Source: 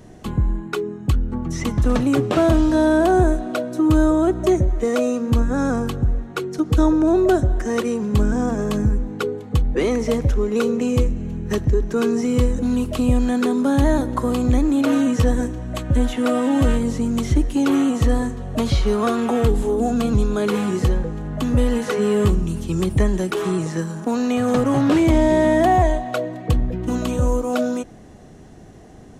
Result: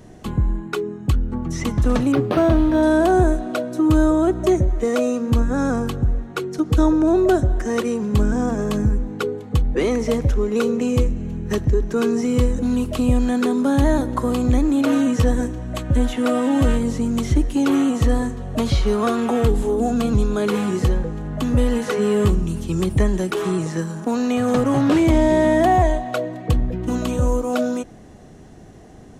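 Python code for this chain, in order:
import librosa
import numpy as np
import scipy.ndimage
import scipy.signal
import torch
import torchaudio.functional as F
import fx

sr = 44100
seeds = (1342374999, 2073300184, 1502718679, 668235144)

y = fx.resample_linear(x, sr, factor=6, at=(2.12, 2.83))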